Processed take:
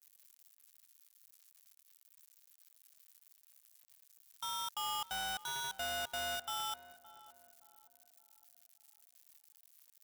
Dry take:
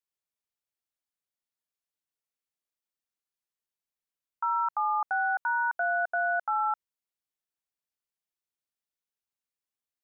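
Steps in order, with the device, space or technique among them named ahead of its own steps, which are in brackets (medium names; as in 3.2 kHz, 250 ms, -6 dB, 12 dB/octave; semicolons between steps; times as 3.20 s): 4.83–6.36 s: bass shelf 420 Hz +2 dB; budget class-D amplifier (dead-time distortion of 0.27 ms; zero-crossing glitches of -33.5 dBFS); tape echo 569 ms, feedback 43%, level -13.5 dB, low-pass 1.1 kHz; trim -7 dB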